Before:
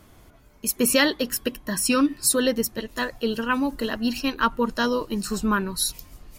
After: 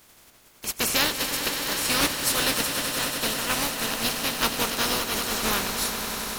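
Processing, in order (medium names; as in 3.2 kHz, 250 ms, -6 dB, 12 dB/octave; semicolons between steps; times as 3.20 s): spectral contrast reduction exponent 0.26; echo with a slow build-up 95 ms, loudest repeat 5, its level -11 dB; loudspeaker Doppler distortion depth 0.13 ms; trim -3 dB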